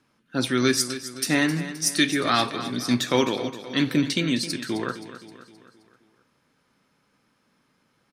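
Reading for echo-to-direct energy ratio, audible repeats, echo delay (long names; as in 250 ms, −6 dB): −11.5 dB, 4, 262 ms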